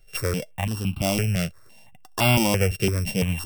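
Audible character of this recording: a buzz of ramps at a fixed pitch in blocks of 16 samples; notches that jump at a steady rate 5.9 Hz 260–1800 Hz

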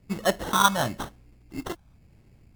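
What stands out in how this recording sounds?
phasing stages 4, 1 Hz, lowest notch 380–2300 Hz; aliases and images of a low sample rate 2.4 kHz, jitter 0%; Vorbis

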